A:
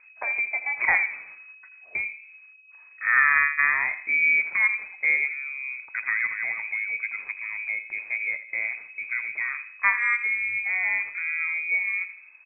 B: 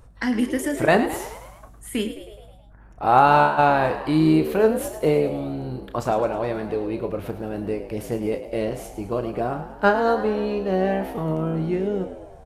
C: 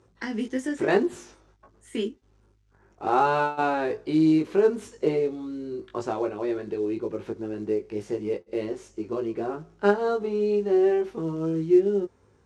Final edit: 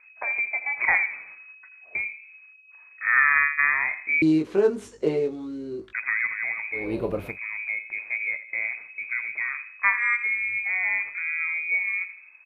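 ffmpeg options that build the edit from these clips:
-filter_complex "[0:a]asplit=3[a][b][c];[a]atrim=end=4.222[d];[2:a]atrim=start=4.218:end=5.932[e];[b]atrim=start=5.928:end=6.95[f];[1:a]atrim=start=6.71:end=7.39[g];[c]atrim=start=7.15[h];[d][e]acrossfade=d=0.004:c1=hsin:c2=hsin[i];[i][f]acrossfade=d=0.004:c1=hsin:c2=hsin[j];[j][g]acrossfade=d=0.24:c1=tri:c2=tri[k];[k][h]acrossfade=d=0.24:c1=tri:c2=tri"

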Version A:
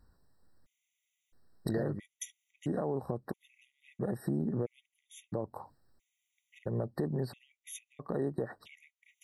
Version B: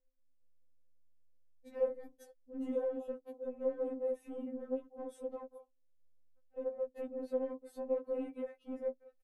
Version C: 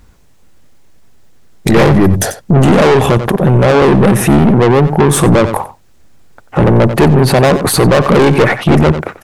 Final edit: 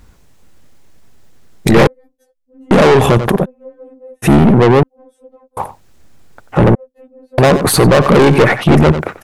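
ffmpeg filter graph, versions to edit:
-filter_complex "[1:a]asplit=4[a][b][c][d];[2:a]asplit=5[e][f][g][h][i];[e]atrim=end=1.872[j];[a]atrim=start=1.868:end=2.712[k];[f]atrim=start=2.708:end=3.46[l];[b]atrim=start=3.42:end=4.26[m];[g]atrim=start=4.22:end=4.832[n];[c]atrim=start=4.828:end=5.572[o];[h]atrim=start=5.568:end=6.752[p];[d]atrim=start=6.748:end=7.382[q];[i]atrim=start=7.378[r];[j][k]acrossfade=d=0.004:c1=hsin:c2=hsin[s];[s][l]acrossfade=d=0.004:c1=hsin:c2=hsin[t];[t][m]acrossfade=d=0.04:c1=tri:c2=tri[u];[u][n]acrossfade=d=0.04:c1=tri:c2=tri[v];[v][o]acrossfade=d=0.004:c1=hsin:c2=hsin[w];[w][p]acrossfade=d=0.004:c1=hsin:c2=hsin[x];[x][q]acrossfade=d=0.004:c1=hsin:c2=hsin[y];[y][r]acrossfade=d=0.004:c1=hsin:c2=hsin"

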